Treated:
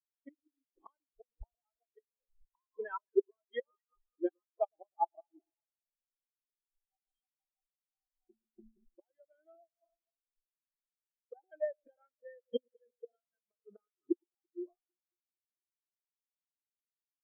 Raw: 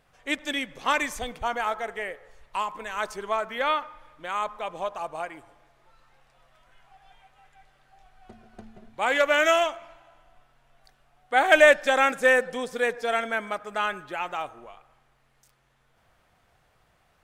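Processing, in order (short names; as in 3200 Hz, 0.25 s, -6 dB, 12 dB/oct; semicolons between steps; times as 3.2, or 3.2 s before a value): small resonant body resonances 340/3200 Hz, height 12 dB, ringing for 50 ms; flipped gate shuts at -21 dBFS, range -25 dB; on a send: echo with dull and thin repeats by turns 0.112 s, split 850 Hz, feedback 86%, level -13 dB; on the sum: spectral expander 4:1; gain +1 dB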